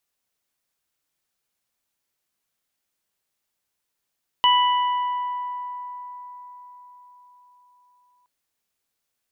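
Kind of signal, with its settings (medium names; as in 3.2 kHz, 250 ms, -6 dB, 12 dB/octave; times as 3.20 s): additive tone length 3.82 s, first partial 987 Hz, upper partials -14/-2 dB, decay 4.92 s, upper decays 2.72/1.47 s, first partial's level -14.5 dB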